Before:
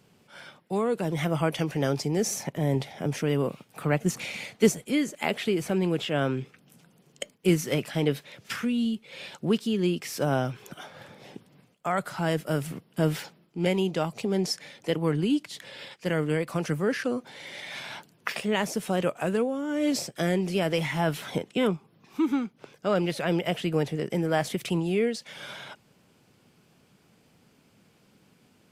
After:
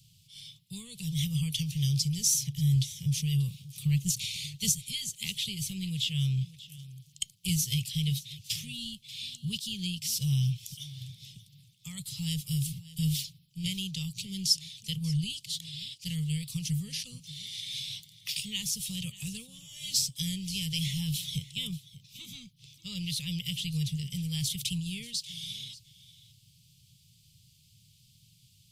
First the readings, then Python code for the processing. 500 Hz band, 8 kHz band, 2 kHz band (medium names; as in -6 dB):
under -30 dB, +6.0 dB, -11.5 dB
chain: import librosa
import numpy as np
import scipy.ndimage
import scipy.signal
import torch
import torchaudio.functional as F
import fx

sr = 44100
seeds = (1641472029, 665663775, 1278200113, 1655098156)

y = scipy.signal.sosfilt(scipy.signal.ellip(3, 1.0, 40, [130.0, 3400.0], 'bandstop', fs=sr, output='sos'), x)
y = y + 10.0 ** (-18.0 / 20.0) * np.pad(y, (int(586 * sr / 1000.0), 0))[:len(y)]
y = y * 10.0 ** (7.0 / 20.0)